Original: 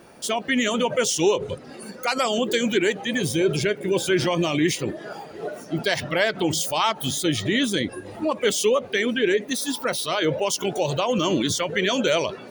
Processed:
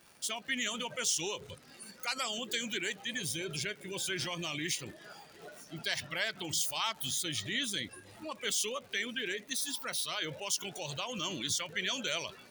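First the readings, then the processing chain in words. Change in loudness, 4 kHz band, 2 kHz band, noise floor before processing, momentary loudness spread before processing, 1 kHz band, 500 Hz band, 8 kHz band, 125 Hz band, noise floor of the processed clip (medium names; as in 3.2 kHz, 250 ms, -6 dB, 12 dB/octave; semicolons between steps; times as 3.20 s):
-11.5 dB, -7.5 dB, -10.0 dB, -42 dBFS, 8 LU, -15.0 dB, -20.0 dB, -6.0 dB, -16.0 dB, -57 dBFS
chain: amplifier tone stack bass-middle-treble 5-5-5; crackle 130 per s -44 dBFS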